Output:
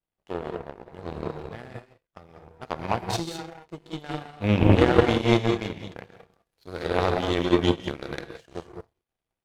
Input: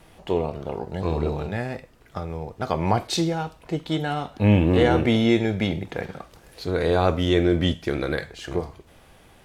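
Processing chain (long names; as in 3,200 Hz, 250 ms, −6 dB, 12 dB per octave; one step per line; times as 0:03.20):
reverb whose tail is shaped and stops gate 230 ms rising, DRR 1 dB
power curve on the samples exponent 2
level +2.5 dB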